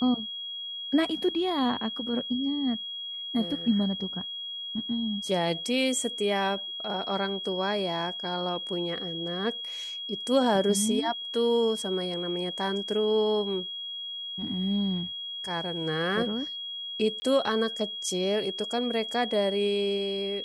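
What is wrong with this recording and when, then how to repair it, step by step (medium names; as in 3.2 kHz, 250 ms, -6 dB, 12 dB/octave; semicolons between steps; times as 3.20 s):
whine 3.3 kHz -34 dBFS
17.20–17.22 s: dropout 20 ms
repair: band-stop 3.3 kHz, Q 30; interpolate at 17.20 s, 20 ms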